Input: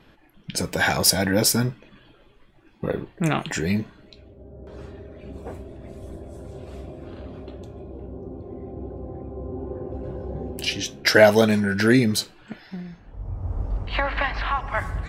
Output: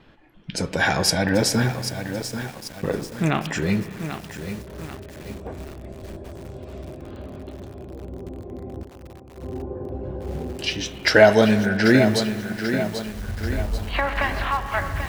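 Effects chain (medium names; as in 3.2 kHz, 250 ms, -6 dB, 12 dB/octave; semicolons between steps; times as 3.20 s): distance through air 52 m; spring tank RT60 2.9 s, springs 32/56 ms, chirp 45 ms, DRR 12 dB; 8.83–9.43 s: expander -27 dBFS; bit-crushed delay 788 ms, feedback 55%, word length 6-bit, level -8.5 dB; trim +1 dB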